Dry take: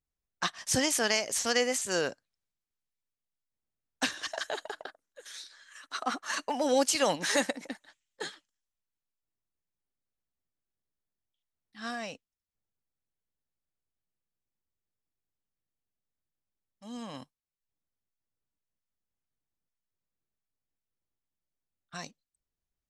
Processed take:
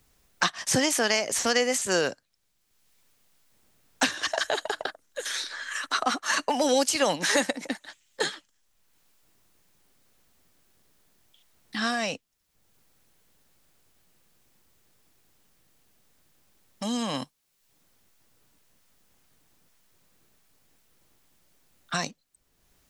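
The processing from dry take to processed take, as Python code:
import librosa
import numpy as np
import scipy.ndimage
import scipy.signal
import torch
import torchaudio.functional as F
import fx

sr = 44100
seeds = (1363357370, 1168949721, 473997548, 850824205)

y = fx.band_squash(x, sr, depth_pct=70)
y = F.gain(torch.from_numpy(y), 6.0).numpy()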